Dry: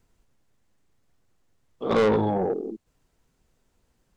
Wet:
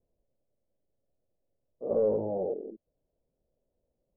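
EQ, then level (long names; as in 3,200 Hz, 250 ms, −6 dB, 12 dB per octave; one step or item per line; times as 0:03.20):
transistor ladder low-pass 630 Hz, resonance 70%
−1.5 dB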